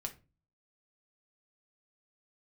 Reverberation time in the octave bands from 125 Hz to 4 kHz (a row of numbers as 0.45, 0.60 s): 0.60, 0.50, 0.35, 0.25, 0.25, 0.20 s